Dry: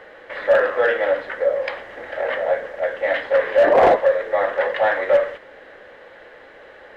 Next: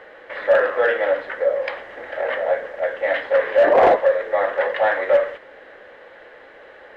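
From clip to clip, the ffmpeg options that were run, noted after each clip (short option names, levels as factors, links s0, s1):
-af "bass=f=250:g=-4,treble=f=4000:g=-4"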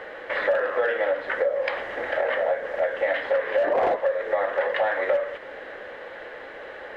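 -af "acompressor=threshold=0.0501:ratio=6,volume=1.78"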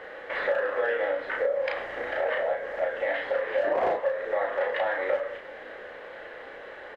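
-filter_complex "[0:a]asplit=2[s0][s1];[s1]adelay=34,volume=0.708[s2];[s0][s2]amix=inputs=2:normalize=0,volume=0.562"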